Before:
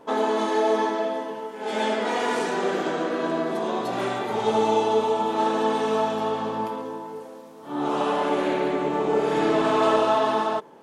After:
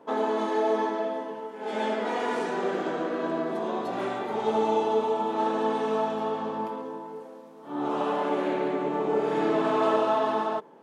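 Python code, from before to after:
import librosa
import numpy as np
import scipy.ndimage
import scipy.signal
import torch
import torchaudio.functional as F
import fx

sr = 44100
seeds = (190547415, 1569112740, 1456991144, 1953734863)

y = scipy.signal.sosfilt(scipy.signal.butter(4, 140.0, 'highpass', fs=sr, output='sos'), x)
y = fx.high_shelf(y, sr, hz=3100.0, db=-8.5)
y = y * 10.0 ** (-3.0 / 20.0)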